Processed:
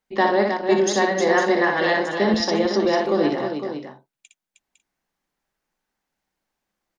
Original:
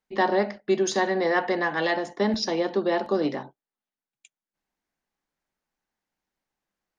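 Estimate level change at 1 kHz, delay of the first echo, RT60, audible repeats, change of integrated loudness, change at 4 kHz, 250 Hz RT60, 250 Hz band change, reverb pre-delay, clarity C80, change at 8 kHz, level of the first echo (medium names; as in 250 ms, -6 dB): +5.0 dB, 60 ms, no reverb, 4, +5.0 dB, +5.0 dB, no reverb, +5.5 dB, no reverb, no reverb, no reading, -4.5 dB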